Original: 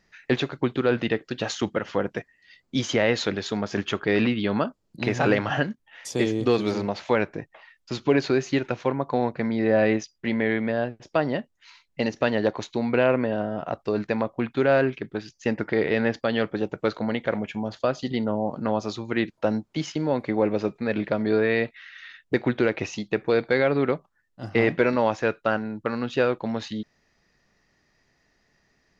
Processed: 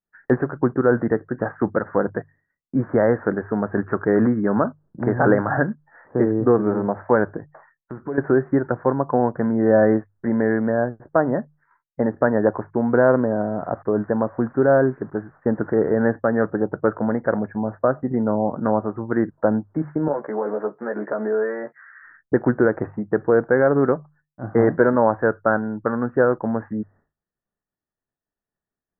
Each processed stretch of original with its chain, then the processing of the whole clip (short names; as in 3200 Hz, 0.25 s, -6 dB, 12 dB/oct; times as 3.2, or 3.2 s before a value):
7.37–8.18 compressor 2:1, threshold -39 dBFS + high shelf 3200 Hz +8.5 dB + mismatched tape noise reduction decoder only
13.2–16.01 switching spikes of -22.5 dBFS + LPF 1200 Hz 6 dB/oct
20.08–22.03 HPF 400 Hz + compressor 3:1, threshold -27 dBFS + doubler 14 ms -2 dB
whole clip: steep low-pass 1700 Hz 72 dB/oct; expander -52 dBFS; notches 50/100/150 Hz; gain +5 dB